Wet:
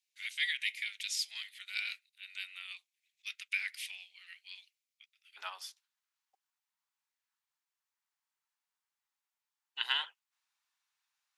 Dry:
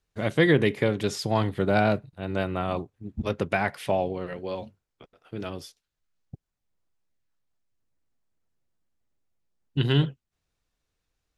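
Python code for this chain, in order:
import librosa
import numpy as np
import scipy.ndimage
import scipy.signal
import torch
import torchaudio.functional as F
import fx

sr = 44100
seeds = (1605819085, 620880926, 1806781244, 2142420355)

y = fx.cheby1_highpass(x, sr, hz=fx.steps((0.0, 2200.0), (5.36, 880.0)), order=4)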